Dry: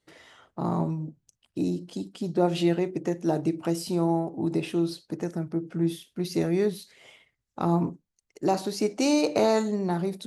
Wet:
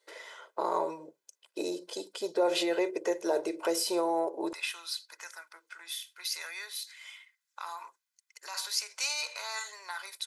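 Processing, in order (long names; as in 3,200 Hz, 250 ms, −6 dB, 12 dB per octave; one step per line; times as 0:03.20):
notch filter 2,900 Hz, Q 18
comb filter 2 ms, depth 56%
brickwall limiter −20.5 dBFS, peak gain reduction 10 dB
high-pass filter 420 Hz 24 dB per octave, from 0:04.53 1,200 Hz
level +4.5 dB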